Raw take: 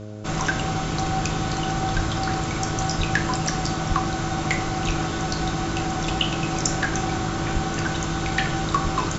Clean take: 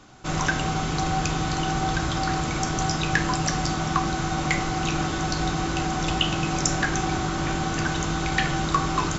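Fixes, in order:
hum removal 105.5 Hz, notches 6
high-pass at the plosives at 0:01.95/0:02.97/0:03.88/0:04.86/0:07.53/0:08.83

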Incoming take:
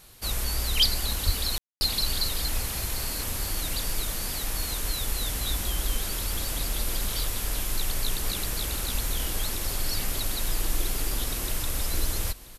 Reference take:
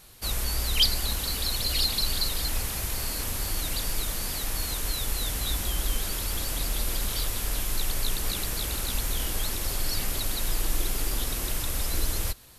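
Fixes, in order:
0:01.25–0:01.37: high-pass filter 140 Hz 24 dB per octave
ambience match 0:01.58–0:01.81
echo removal 983 ms −18.5 dB

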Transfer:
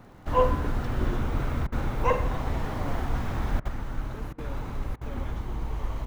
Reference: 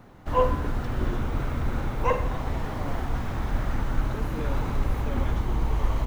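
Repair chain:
click removal
repair the gap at 0:01.67/0:03.60/0:04.33/0:04.96, 51 ms
level correction +6.5 dB, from 0:03.68

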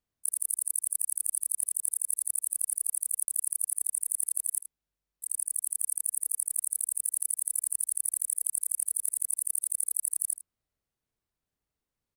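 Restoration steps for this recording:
repair the gap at 0:03.25, 31 ms
echo removal 78 ms −13.5 dB

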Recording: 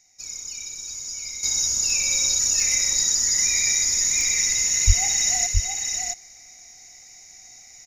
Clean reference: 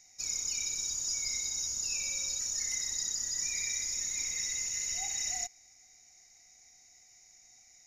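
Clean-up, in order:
high-pass at the plosives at 0:04.86
repair the gap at 0:01.90/0:02.60/0:04.21, 1.6 ms
echo removal 670 ms −4.5 dB
level correction −12 dB, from 0:01.43

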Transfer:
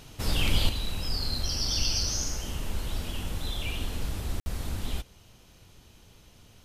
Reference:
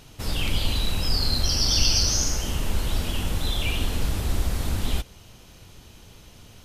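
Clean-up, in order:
ambience match 0:04.40–0:04.46
level correction +7 dB, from 0:00.69

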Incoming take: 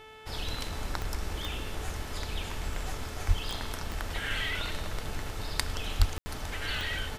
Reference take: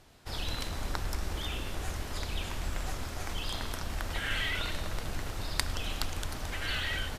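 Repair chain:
click removal
hum removal 436.5 Hz, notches 8
0:03.27–0:03.39: high-pass filter 140 Hz 24 dB per octave
0:05.98–0:06.10: high-pass filter 140 Hz 24 dB per octave
ambience match 0:06.18–0:06.26

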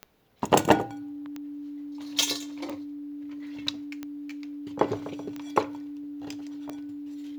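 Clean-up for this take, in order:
click removal
notch filter 290 Hz, Q 30

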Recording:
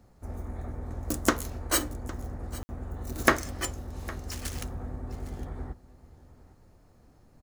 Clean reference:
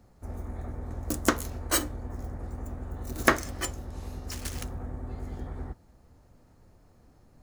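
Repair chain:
ambience match 0:02.63–0:02.69
echo removal 808 ms −19 dB

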